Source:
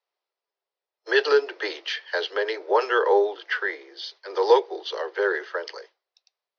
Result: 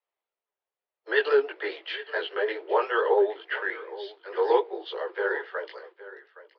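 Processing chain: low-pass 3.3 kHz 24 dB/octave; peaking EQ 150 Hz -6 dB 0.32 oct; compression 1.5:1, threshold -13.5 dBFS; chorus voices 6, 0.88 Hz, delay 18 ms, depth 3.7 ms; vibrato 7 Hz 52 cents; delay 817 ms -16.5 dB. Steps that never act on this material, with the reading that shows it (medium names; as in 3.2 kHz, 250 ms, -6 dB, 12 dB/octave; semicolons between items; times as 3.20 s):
peaking EQ 150 Hz: input has nothing below 290 Hz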